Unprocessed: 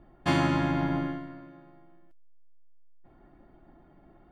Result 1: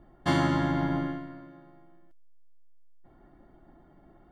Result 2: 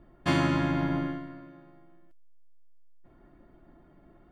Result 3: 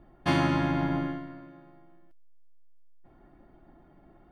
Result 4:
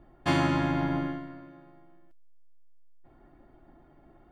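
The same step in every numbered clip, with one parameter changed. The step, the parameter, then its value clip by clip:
notch, frequency: 2500, 790, 7400, 190 Hz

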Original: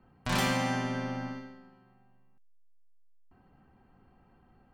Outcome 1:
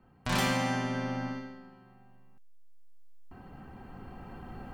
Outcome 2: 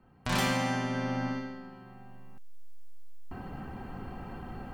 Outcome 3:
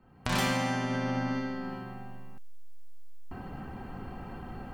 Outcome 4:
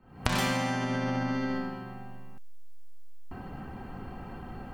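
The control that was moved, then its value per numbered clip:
recorder AGC, rising by: 5, 12, 33, 85 dB/s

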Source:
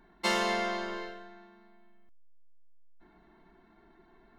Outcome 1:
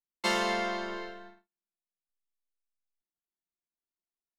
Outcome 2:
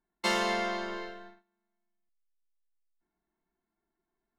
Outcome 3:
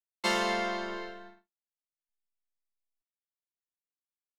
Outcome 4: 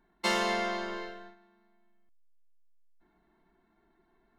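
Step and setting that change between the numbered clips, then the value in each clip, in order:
gate, range: -47, -25, -60, -9 dB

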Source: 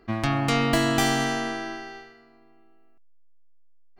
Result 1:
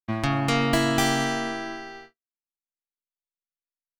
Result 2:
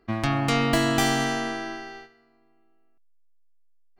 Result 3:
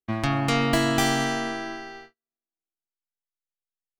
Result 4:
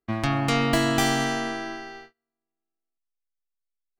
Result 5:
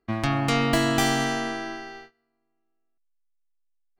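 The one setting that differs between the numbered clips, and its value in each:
gate, range: -58, -7, -45, -32, -20 dB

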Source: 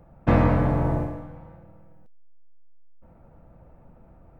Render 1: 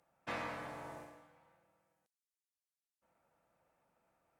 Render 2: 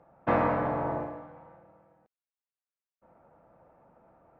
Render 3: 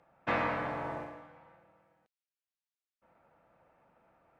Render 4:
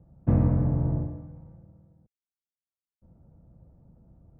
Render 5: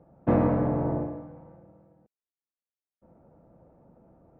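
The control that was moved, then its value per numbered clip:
band-pass, frequency: 8000, 1000, 2600, 110, 370 Hz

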